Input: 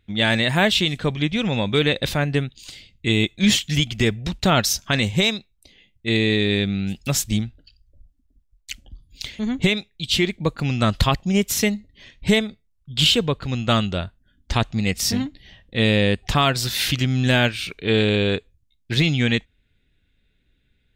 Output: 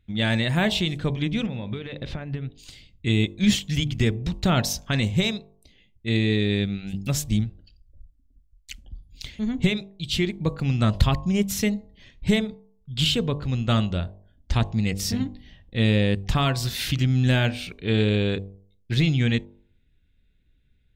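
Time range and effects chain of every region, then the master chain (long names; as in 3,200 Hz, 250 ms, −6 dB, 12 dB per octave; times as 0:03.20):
0:01.46–0:02.58: low-pass filter 3,500 Hz + downward compressor 12 to 1, threshold −24 dBFS
whole clip: low-shelf EQ 240 Hz +9.5 dB; hum removal 49.02 Hz, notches 23; level −6.5 dB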